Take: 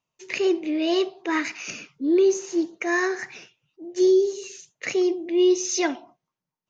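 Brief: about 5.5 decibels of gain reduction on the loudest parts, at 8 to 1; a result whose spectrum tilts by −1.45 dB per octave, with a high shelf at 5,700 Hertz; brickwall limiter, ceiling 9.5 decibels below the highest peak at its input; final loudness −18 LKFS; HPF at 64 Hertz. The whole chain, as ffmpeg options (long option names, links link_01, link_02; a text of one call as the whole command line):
ffmpeg -i in.wav -af "highpass=64,highshelf=frequency=5700:gain=5.5,acompressor=threshold=-20dB:ratio=8,volume=11dB,alimiter=limit=-9.5dB:level=0:latency=1" out.wav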